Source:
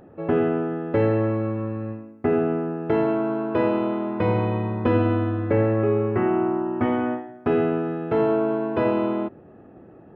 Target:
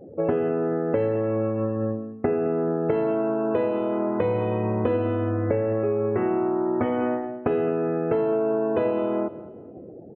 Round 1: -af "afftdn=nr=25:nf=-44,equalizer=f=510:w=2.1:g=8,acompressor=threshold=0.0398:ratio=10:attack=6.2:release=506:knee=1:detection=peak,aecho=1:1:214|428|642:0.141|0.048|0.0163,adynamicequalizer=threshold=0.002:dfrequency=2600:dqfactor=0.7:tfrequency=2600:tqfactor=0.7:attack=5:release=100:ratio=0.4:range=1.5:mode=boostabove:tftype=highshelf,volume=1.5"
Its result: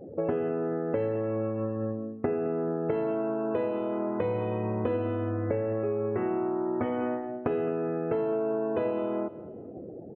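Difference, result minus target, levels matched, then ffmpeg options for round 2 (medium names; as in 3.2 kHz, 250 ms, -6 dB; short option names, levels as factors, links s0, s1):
compression: peak gain reduction +5.5 dB
-af "afftdn=nr=25:nf=-44,equalizer=f=510:w=2.1:g=8,acompressor=threshold=0.0794:ratio=10:attack=6.2:release=506:knee=1:detection=peak,aecho=1:1:214|428|642:0.141|0.048|0.0163,adynamicequalizer=threshold=0.002:dfrequency=2600:dqfactor=0.7:tfrequency=2600:tqfactor=0.7:attack=5:release=100:ratio=0.4:range=1.5:mode=boostabove:tftype=highshelf,volume=1.5"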